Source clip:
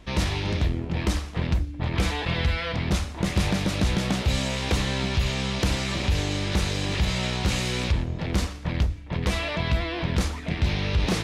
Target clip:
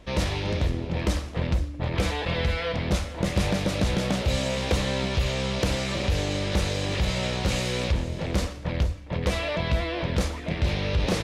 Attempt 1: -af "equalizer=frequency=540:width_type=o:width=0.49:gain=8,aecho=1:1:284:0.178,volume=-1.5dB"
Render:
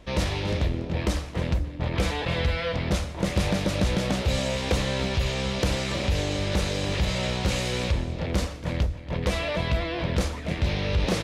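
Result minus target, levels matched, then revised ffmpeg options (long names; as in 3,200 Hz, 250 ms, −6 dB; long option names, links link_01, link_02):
echo 186 ms early
-af "equalizer=frequency=540:width_type=o:width=0.49:gain=8,aecho=1:1:470:0.178,volume=-1.5dB"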